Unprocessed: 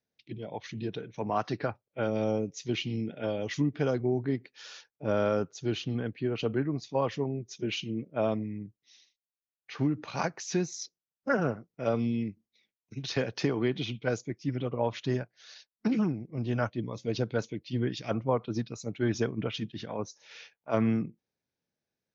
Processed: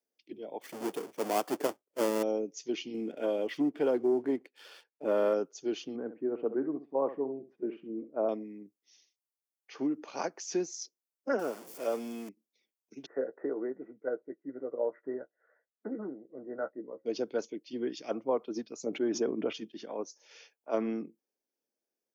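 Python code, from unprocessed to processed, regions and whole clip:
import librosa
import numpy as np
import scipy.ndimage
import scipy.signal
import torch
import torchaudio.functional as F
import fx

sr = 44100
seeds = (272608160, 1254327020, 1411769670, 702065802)

y = fx.chain(x, sr, fx.halfwave_hold(),
    fx.high_shelf(hz=3300.0, db=-6.5), at=(0.61, 2.23))
y = fx.chain(y, sr, fx.lowpass(hz=3900.0, slope=24),
    fx.leveller(passes=1), at=(2.94, 5.34))
y = fx.chain(y, sr, fx.lowpass(hz=1500.0, slope=24),
    fx.echo_feedback(ms=66, feedback_pct=15, wet_db=-12.5), at=(5.96, 8.29))
y = fx.chain(y, sr, fx.zero_step(step_db=-36.5),
    fx.low_shelf(hz=350.0, db=-7.5), at=(11.39, 12.29))
y = fx.chain(y, sr, fx.cheby_ripple(hz=2000.0, ripple_db=9),
    fx.doubler(ms=15.0, db=-9.5), at=(13.06, 17.06))
y = fx.chain(y, sr, fx.high_shelf(hz=2300.0, db=-11.0),
    fx.env_flatten(amount_pct=70), at=(18.83, 19.53))
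y = scipy.signal.sosfilt(scipy.signal.butter(4, 290.0, 'highpass', fs=sr, output='sos'), y)
y = fx.peak_eq(y, sr, hz=1900.0, db=-10.0, octaves=2.6)
y = fx.notch(y, sr, hz=3900.0, q=6.4)
y = F.gain(torch.from_numpy(y), 2.0).numpy()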